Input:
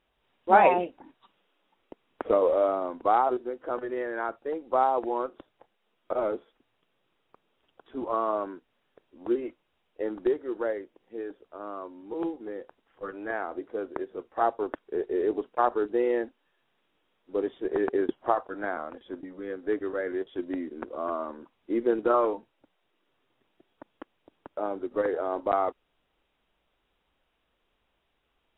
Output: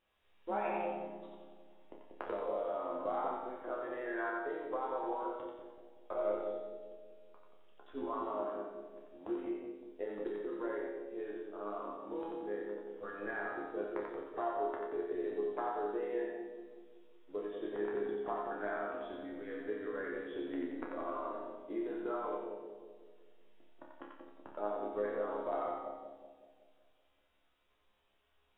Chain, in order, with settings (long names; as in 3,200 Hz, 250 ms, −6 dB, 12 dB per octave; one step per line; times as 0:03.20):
low-shelf EQ 87 Hz +10.5 dB
downward compressor 5 to 1, threshold −31 dBFS, peak gain reduction 16.5 dB
low-shelf EQ 230 Hz −8.5 dB
resonators tuned to a chord C#2 major, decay 0.68 s
on a send: echo with a time of its own for lows and highs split 690 Hz, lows 188 ms, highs 89 ms, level −3 dB
on the sum: level +12 dB